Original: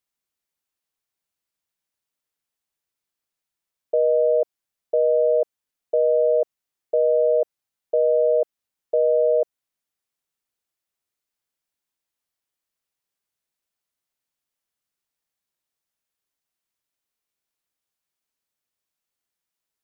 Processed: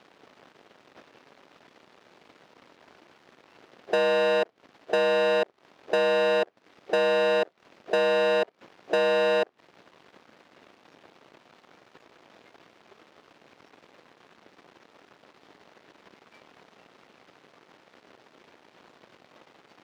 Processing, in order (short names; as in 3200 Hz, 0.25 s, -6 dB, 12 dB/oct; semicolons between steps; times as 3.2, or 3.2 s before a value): added noise pink -51 dBFS; spectral noise reduction 18 dB; in parallel at -6.5 dB: sine folder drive 14 dB, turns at -11.5 dBFS; on the sum: compressor 16:1, threshold -26 dBFS, peak gain reduction 13 dB; sample leveller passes 1; air absorption 240 m; sample leveller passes 2; HPF 340 Hz 12 dB/oct; low shelf 450 Hz +6 dB; gain -1.5 dB